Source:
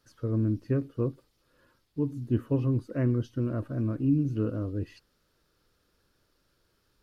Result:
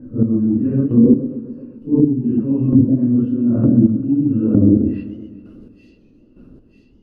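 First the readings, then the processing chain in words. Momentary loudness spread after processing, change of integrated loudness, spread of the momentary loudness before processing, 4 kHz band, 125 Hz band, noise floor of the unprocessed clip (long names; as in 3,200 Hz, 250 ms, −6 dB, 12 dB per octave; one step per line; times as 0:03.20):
14 LU, +14.0 dB, 7 LU, can't be measured, +9.0 dB, −73 dBFS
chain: random phases in long frames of 200 ms
high-shelf EQ 4,000 Hz −9 dB
hollow resonant body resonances 240/2,700 Hz, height 16 dB, ringing for 40 ms
reversed playback
downward compressor 16 to 1, threshold −30 dBFS, peak gain reduction 22.5 dB
reversed playback
low-pass that shuts in the quiet parts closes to 430 Hz, open at −31 dBFS
tilt shelving filter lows +3 dB
hum removal 48.3 Hz, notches 3
on a send: delay with a high-pass on its return 938 ms, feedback 59%, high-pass 3,500 Hz, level −11 dB
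on the sum: square-wave tremolo 1.1 Hz, depth 65%, duty 25%
treble cut that deepens with the level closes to 480 Hz, closed at −31.5 dBFS
boost into a limiter +24.5 dB
feedback echo with a swinging delay time 130 ms, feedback 65%, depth 139 cents, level −14.5 dB
level −1.5 dB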